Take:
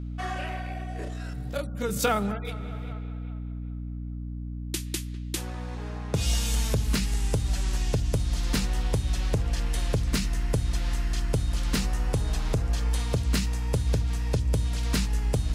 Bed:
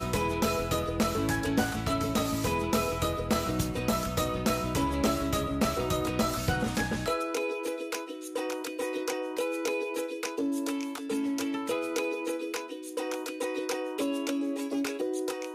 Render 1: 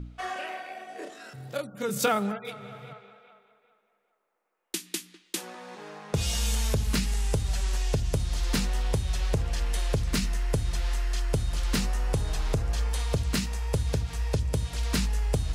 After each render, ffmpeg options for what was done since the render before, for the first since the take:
-af "bandreject=f=60:t=h:w=4,bandreject=f=120:t=h:w=4,bandreject=f=180:t=h:w=4,bandreject=f=240:t=h:w=4,bandreject=f=300:t=h:w=4"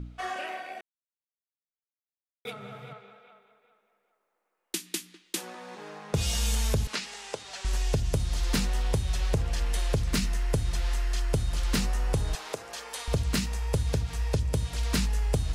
-filter_complex "[0:a]asettb=1/sr,asplit=3[a][b][c];[a]atrim=end=6.874[d];[b]atrim=start=6.87:end=7.65,asetpts=PTS-STARTPTS,afade=t=in:d=0.004:c=qsin,afade=t=out:st=0.776:d=0.004:c=qsin,highpass=510,lowpass=6.1k[e];[c]atrim=start=7.646[f];[d][e]acrossfade=d=0.004:c1=hsin:c2=qsin[g];[g][f]acrossfade=d=0.004:c1=qsin:c2=hsin,asettb=1/sr,asplit=3[h][i][j];[h]atrim=end=12.354[k];[i]atrim=start=12.35:end=13.08,asetpts=PTS-STARTPTS,afade=t=in:d=0.004:c=qsin,afade=t=out:st=0.726:d=0.004:c=qsin,highpass=450[l];[j]atrim=start=13.076[m];[k][l]acrossfade=d=0.004:c1=hsin:c2=qsin[n];[n][m]acrossfade=d=0.004:c1=qsin:c2=hsin,asplit=3[o][p][q];[o]atrim=end=0.81,asetpts=PTS-STARTPTS,afade=t=out:st=0.806:d=0.004:c=hsin[r];[p]atrim=start=0.81:end=2.45,asetpts=PTS-STARTPTS,volume=0[s];[q]atrim=start=2.45,asetpts=PTS-STARTPTS,afade=t=in:d=0.004:c=hsin[t];[r][s][t]concat=n=3:v=0:a=1"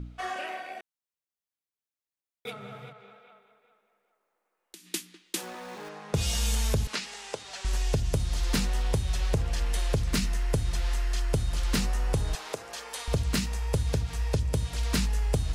-filter_complex "[0:a]asettb=1/sr,asplit=3[a][b][c];[a]atrim=end=2.894[d];[b]atrim=start=2.89:end=4.89,asetpts=PTS-STARTPTS,afade=t=in:d=0.004:c=qsin,afade=t=out:st=1.996:d=0.004:c=qsin,acompressor=threshold=-45dB:ratio=6:attack=3.2:release=140:knee=1:detection=peak[e];[c]atrim=start=4.886[f];[d][e]acrossfade=d=0.004:c1=hsin:c2=qsin[g];[g][f]acrossfade=d=0.004:c1=qsin:c2=hsin,asettb=1/sr,asplit=3[h][i][j];[h]atrim=end=5.394[k];[i]atrim=start=5.39:end=5.89,asetpts=PTS-STARTPTS,afade=t=in:d=0.004:c=qsin,afade=t=out:st=0.496:d=0.004:c=qsin,aeval=exprs='val(0)+0.5*0.00447*sgn(val(0))':c=same[l];[j]atrim=start=5.886[m];[k][l]acrossfade=d=0.004:c1=hsin:c2=qsin[n];[n][m]acrossfade=d=0.004:c1=qsin:c2=hsin"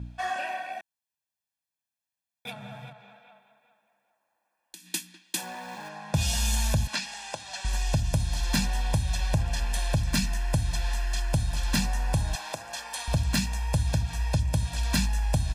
-af "highpass=f=73:p=1,aecho=1:1:1.2:0.85"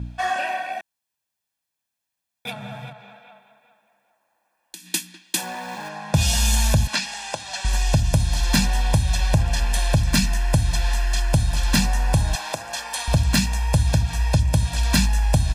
-af "volume=7dB"

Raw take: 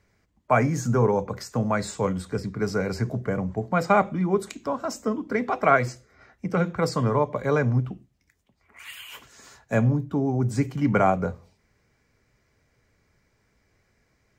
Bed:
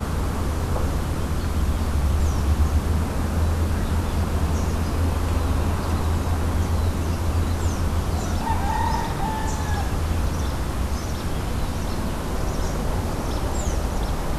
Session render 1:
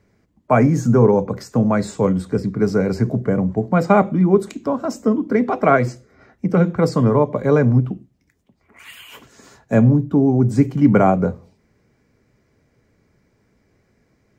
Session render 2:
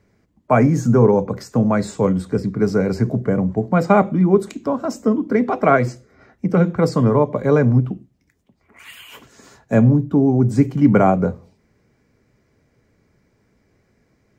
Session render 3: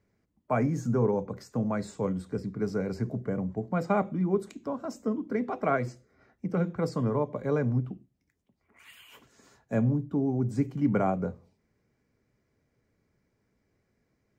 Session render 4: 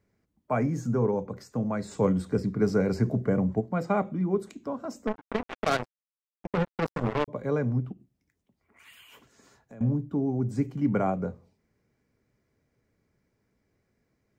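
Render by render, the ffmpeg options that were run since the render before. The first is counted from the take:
-af "equalizer=f=250:w=0.44:g=10.5"
-af anull
-af "volume=-12.5dB"
-filter_complex "[0:a]asettb=1/sr,asplit=3[a][b][c];[a]atrim=end=1.914[d];[b]atrim=start=1.91:end=3.61,asetpts=PTS-STARTPTS,afade=t=in:d=0.004:c=qsin,afade=t=out:st=1.696:d=0.004:c=qsin,acontrast=52[e];[c]atrim=start=3.606[f];[d][e]acrossfade=d=0.004:c1=hsin:c2=qsin[g];[g][f]acrossfade=d=0.004:c1=qsin:c2=hsin,asettb=1/sr,asplit=3[h][i][j];[h]atrim=end=5.074[k];[i]atrim=start=5.07:end=7.28,asetpts=PTS-STARTPTS,afade=t=in:d=0.004:c=qsin,afade=t=out:st=2.206:d=0.004:c=qsin,acrusher=bits=3:mix=0:aa=0.5[l];[j]atrim=start=7.276[m];[k][l]acrossfade=d=0.004:c1=hsin:c2=qsin[n];[n][m]acrossfade=d=0.004:c1=qsin:c2=hsin,asettb=1/sr,asplit=3[o][p][q];[o]atrim=end=7.924[r];[p]atrim=start=7.92:end=9.81,asetpts=PTS-STARTPTS,afade=t=in:d=0.004:c=qsin,afade=t=out:st=1.886:d=0.004:c=qsin,acompressor=threshold=-47dB:ratio=4:attack=3.2:release=140:knee=1:detection=peak[s];[q]atrim=start=9.806[t];[r][s]acrossfade=d=0.004:c1=hsin:c2=qsin[u];[u][t]acrossfade=d=0.004:c1=qsin:c2=hsin"

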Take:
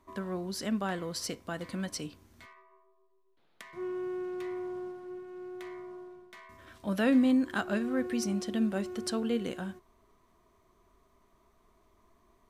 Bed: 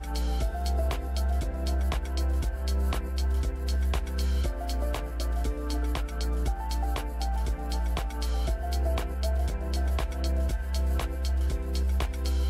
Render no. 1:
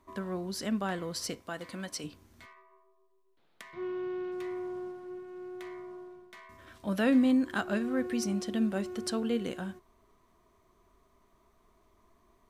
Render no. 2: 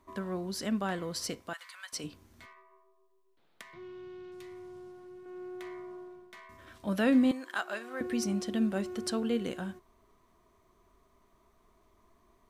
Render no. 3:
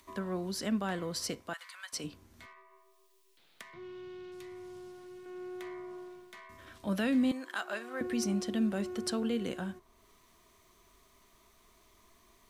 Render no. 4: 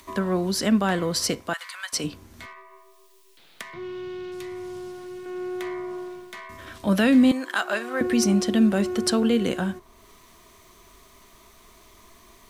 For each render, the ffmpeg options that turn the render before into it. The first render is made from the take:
-filter_complex "[0:a]asettb=1/sr,asplit=3[a][b][c];[a]atrim=end=1.414[d];[b]atrim=start=1.41:end=2.04,asetpts=PTS-STARTPTS,afade=t=in:d=0.004:c=qsin,afade=t=out:st=0.626:d=0.004:c=qsin,lowshelf=f=230:g=-9.5[e];[c]atrim=start=2.036[f];[d][e]acrossfade=d=0.004:c1=hsin:c2=qsin[g];[g][f]acrossfade=d=0.004:c1=qsin:c2=hsin,asettb=1/sr,asplit=3[h][i][j];[h]atrim=end=3.734[k];[i]atrim=start=3.73:end=4.32,asetpts=PTS-STARTPTS,afade=t=in:d=0.004:c=qsin,afade=t=out:st=0.586:d=0.004:c=qsin,lowpass=f=3.7k:t=q:w=1.7[l];[j]atrim=start=4.316[m];[k][l]acrossfade=d=0.004:c1=hsin:c2=qsin[n];[n][m]acrossfade=d=0.004:c1=qsin:c2=hsin"
-filter_complex "[0:a]asettb=1/sr,asplit=3[a][b][c];[a]atrim=end=1.534[d];[b]atrim=start=1.53:end=1.93,asetpts=PTS-STARTPTS,afade=t=in:d=0.004:c=qsin,afade=t=out:st=0.396:d=0.004:c=qsin,highpass=f=1.1k:w=0.5412,highpass=f=1.1k:w=1.3066[e];[c]atrim=start=1.926[f];[d][e]acrossfade=d=0.004:c1=hsin:c2=qsin[g];[g][f]acrossfade=d=0.004:c1=qsin:c2=hsin,asettb=1/sr,asplit=3[h][i][j];[h]atrim=end=3.624[k];[i]atrim=start=3.62:end=5.26,asetpts=PTS-STARTPTS,afade=t=in:d=0.004:c=qsin,afade=t=out:st=1.636:d=0.004:c=qsin,acrossover=split=160|3000[l][m][n];[m]acompressor=threshold=-51dB:ratio=2.5:attack=3.2:release=140:knee=2.83:detection=peak[o];[l][o][n]amix=inputs=3:normalize=0[p];[j]atrim=start=5.256[q];[k][p]acrossfade=d=0.004:c1=hsin:c2=qsin[r];[r][q]acrossfade=d=0.004:c1=qsin:c2=hsin,asettb=1/sr,asplit=3[s][t][u];[s]atrim=end=7.314[v];[t]atrim=start=7.31:end=8.01,asetpts=PTS-STARTPTS,afade=t=in:d=0.004:c=qsin,afade=t=out:st=0.696:d=0.004:c=qsin,highpass=660[w];[u]atrim=start=8.006[x];[v][w]acrossfade=d=0.004:c1=hsin:c2=qsin[y];[y][x]acrossfade=d=0.004:c1=qsin:c2=hsin"
-filter_complex "[0:a]acrossover=split=200|2100[a][b][c];[b]alimiter=level_in=2.5dB:limit=-24dB:level=0:latency=1,volume=-2.5dB[d];[c]acompressor=mode=upward:threshold=-56dB:ratio=2.5[e];[a][d][e]amix=inputs=3:normalize=0"
-af "volume=11.5dB"

